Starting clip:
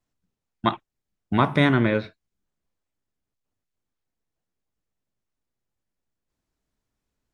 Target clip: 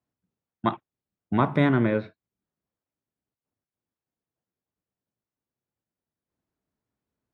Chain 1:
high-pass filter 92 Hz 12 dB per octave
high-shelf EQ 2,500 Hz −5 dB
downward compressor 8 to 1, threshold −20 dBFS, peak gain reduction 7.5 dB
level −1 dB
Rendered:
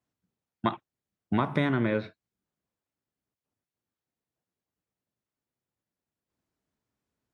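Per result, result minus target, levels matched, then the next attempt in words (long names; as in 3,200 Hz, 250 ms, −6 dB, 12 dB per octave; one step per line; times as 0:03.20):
downward compressor: peak gain reduction +7.5 dB; 4,000 Hz band +4.0 dB
high-pass filter 92 Hz 12 dB per octave
high-shelf EQ 2,500 Hz −5 dB
level −1 dB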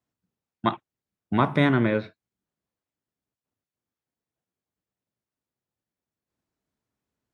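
4,000 Hz band +4.5 dB
high-pass filter 92 Hz 12 dB per octave
high-shelf EQ 2,500 Hz −13 dB
level −1 dB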